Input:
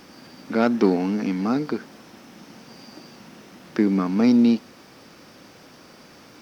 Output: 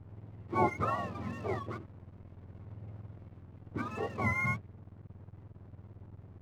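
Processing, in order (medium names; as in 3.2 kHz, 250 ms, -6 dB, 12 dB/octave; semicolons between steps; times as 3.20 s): spectrum inverted on a logarithmic axis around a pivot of 710 Hz; Savitzky-Golay filter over 65 samples; hysteresis with a dead band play -40.5 dBFS; trim -3.5 dB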